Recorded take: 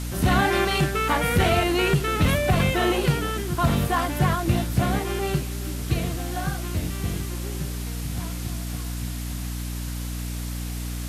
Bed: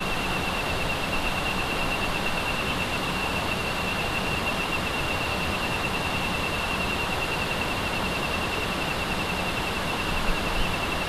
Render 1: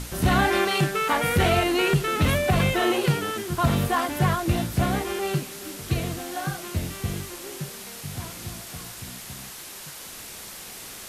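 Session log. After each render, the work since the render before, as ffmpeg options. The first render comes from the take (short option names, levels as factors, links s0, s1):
-af "bandreject=f=60:t=h:w=6,bandreject=f=120:t=h:w=6,bandreject=f=180:t=h:w=6,bandreject=f=240:t=h:w=6,bandreject=f=300:t=h:w=6"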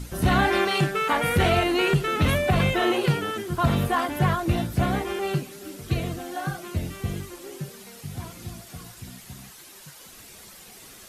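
-af "afftdn=nr=9:nf=-40"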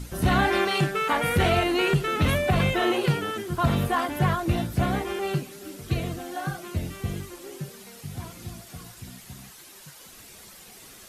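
-af "volume=0.891"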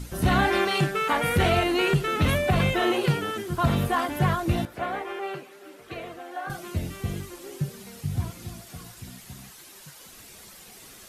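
-filter_complex "[0:a]asettb=1/sr,asplit=3[s0][s1][s2];[s0]atrim=end=4.654[s3];[s1]atrim=start=4.65:end=6.5,asetpts=PTS-STARTPTS,afade=t=in:d=0.004:c=qsin,afade=t=out:st=1.846:d=0.004:c=qsin,acrossover=split=370 2800:gain=0.0891 1 0.224[s4][s5][s6];[s4][s5][s6]amix=inputs=3:normalize=0[s7];[s2]atrim=start=6.496[s8];[s3][s7]acrossfade=d=0.004:c1=hsin:c2=qsin[s9];[s9][s8]acrossfade=d=0.004:c1=qsin:c2=hsin,asettb=1/sr,asplit=3[s10][s11][s12];[s10]atrim=end=7.614[s13];[s11]atrim=start=7.61:end=8.31,asetpts=PTS-STARTPTS,afade=t=in:d=0.004:c=qsin,afade=t=out:st=0.696:d=0.004:c=qsin,equalizer=f=82:w=0.48:g=10[s14];[s12]atrim=start=8.306[s15];[s13][s14]acrossfade=d=0.004:c1=hsin:c2=qsin[s16];[s16][s15]acrossfade=d=0.004:c1=qsin:c2=hsin"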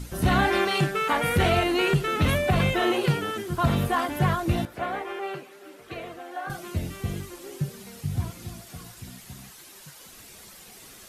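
-af anull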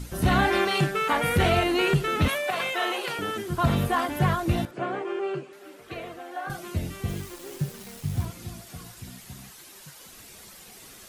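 -filter_complex "[0:a]asettb=1/sr,asplit=3[s0][s1][s2];[s0]atrim=end=2.284[s3];[s1]atrim=start=2.28:end=3.19,asetpts=PTS-STARTPTS,afade=t=in:d=0.004:c=qsin,afade=t=out:st=0.906:d=0.004:c=qsin,highpass=620[s4];[s2]atrim=start=3.186[s5];[s3][s4]acrossfade=d=0.004:c1=hsin:c2=qsin[s6];[s6][s5]acrossfade=d=0.004:c1=qsin:c2=hsin,asettb=1/sr,asplit=3[s7][s8][s9];[s7]atrim=end=4.714[s10];[s8]atrim=start=4.71:end=5.53,asetpts=PTS-STARTPTS,afade=t=in:d=0.004:c=qsin,afade=t=out:st=0.816:d=0.004:c=qsin,highpass=f=120:w=0.5412,highpass=f=120:w=1.3066,equalizer=f=140:t=q:w=4:g=8,equalizer=f=360:t=q:w=4:g=8,equalizer=f=820:t=q:w=4:g=-4,equalizer=f=2000:t=q:w=4:g=-6,equalizer=f=3800:t=q:w=4:g=-6,equalizer=f=5700:t=q:w=4:g=-5,lowpass=f=7900:w=0.5412,lowpass=f=7900:w=1.3066[s11];[s9]atrim=start=5.526[s12];[s10][s11]acrossfade=d=0.004:c1=hsin:c2=qsin[s13];[s13][s12]acrossfade=d=0.004:c1=qsin:c2=hsin,asettb=1/sr,asplit=3[s14][s15][s16];[s14]atrim=end=7.084[s17];[s15]atrim=start=7.08:end=8.25,asetpts=PTS-STARTPTS,afade=t=in:d=0.004:c=qsin,afade=t=out:st=1.166:d=0.004:c=qsin,acrusher=bits=8:dc=4:mix=0:aa=0.000001[s18];[s16]atrim=start=8.246[s19];[s17][s18]acrossfade=d=0.004:c1=hsin:c2=qsin[s20];[s20][s19]acrossfade=d=0.004:c1=qsin:c2=hsin"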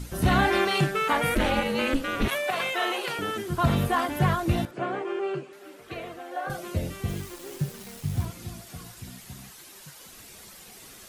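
-filter_complex "[0:a]asplit=3[s0][s1][s2];[s0]afade=t=out:st=1.34:d=0.02[s3];[s1]aeval=exprs='val(0)*sin(2*PI*130*n/s)':c=same,afade=t=in:st=1.34:d=0.02,afade=t=out:st=2.3:d=0.02[s4];[s2]afade=t=in:st=2.3:d=0.02[s5];[s3][s4][s5]amix=inputs=3:normalize=0,asettb=1/sr,asplit=3[s6][s7][s8];[s6]atrim=end=6.314[s9];[s7]atrim=start=6.31:end=6.93,asetpts=PTS-STARTPTS,afade=t=in:d=0.004:c=qsin,afade=t=out:st=0.616:d=0.004:c=qsin,equalizer=f=530:t=o:w=0.39:g=10.5[s10];[s8]atrim=start=6.926[s11];[s9][s10]acrossfade=d=0.004:c1=hsin:c2=qsin[s12];[s12][s11]acrossfade=d=0.004:c1=qsin:c2=hsin"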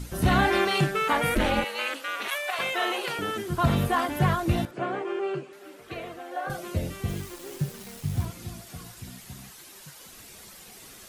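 -filter_complex "[0:a]asettb=1/sr,asplit=3[s0][s1][s2];[s0]atrim=end=1.644[s3];[s1]atrim=start=1.64:end=2.59,asetpts=PTS-STARTPTS,afade=t=in:d=0.004:c=qsin,afade=t=out:st=0.946:d=0.004:c=qsin,highpass=800[s4];[s2]atrim=start=2.586[s5];[s3][s4]acrossfade=d=0.004:c1=hsin:c2=qsin[s6];[s6][s5]acrossfade=d=0.004:c1=qsin:c2=hsin"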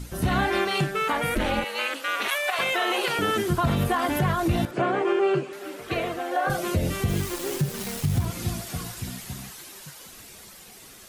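-af "dynaudnorm=f=350:g=13:m=3.55,alimiter=limit=0.188:level=0:latency=1:release=184"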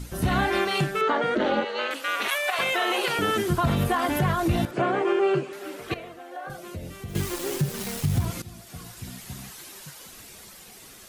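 -filter_complex "[0:a]asettb=1/sr,asplit=3[s0][s1][s2];[s0]atrim=end=1.014[s3];[s1]atrim=start=1.01:end=1.91,asetpts=PTS-STARTPTS,afade=t=in:d=0.004:c=qsin,afade=t=out:st=0.896:d=0.004:c=qsin,highpass=210,equalizer=f=240:t=q:w=4:g=4,equalizer=f=400:t=q:w=4:g=10,equalizer=f=630:t=q:w=4:g=4,equalizer=f=1400:t=q:w=4:g=3,equalizer=f=2400:t=q:w=4:g=-9,equalizer=f=5300:t=q:w=4:g=-6,lowpass=f=5600:w=0.5412,lowpass=f=5600:w=1.3066[s4];[s2]atrim=start=1.906[s5];[s3][s4]acrossfade=d=0.004:c1=hsin:c2=qsin[s6];[s6][s5]acrossfade=d=0.004:c1=qsin:c2=hsin,asplit=4[s7][s8][s9][s10];[s7]atrim=end=5.942[s11];[s8]atrim=start=5.938:end=7.152,asetpts=PTS-STARTPTS,volume=0.251[s12];[s9]atrim=start=7.148:end=8.42,asetpts=PTS-STARTPTS,afade=t=out:st=1.268:d=0.004:c=hsin:silence=0.149624[s13];[s10]atrim=start=8.42,asetpts=PTS-STARTPTS,afade=t=in:d=1.24:silence=0.149624[s14];[s11][s12]acrossfade=d=0.004:c1=hsin:c2=hsin[s15];[s13][s14]concat=n=2:v=0:a=1[s16];[s15][s16]acrossfade=d=0.004:c1=hsin:c2=hsin"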